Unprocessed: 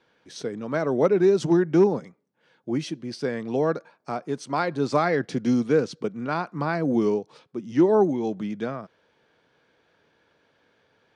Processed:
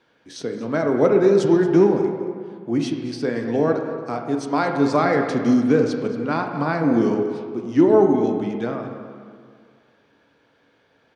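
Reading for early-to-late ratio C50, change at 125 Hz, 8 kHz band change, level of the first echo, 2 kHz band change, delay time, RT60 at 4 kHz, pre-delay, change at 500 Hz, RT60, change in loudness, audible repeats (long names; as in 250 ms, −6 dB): 5.0 dB, +3.5 dB, can't be measured, −15.5 dB, +3.5 dB, 228 ms, 1.3 s, 15 ms, +4.0 dB, 2.1 s, +4.5 dB, 1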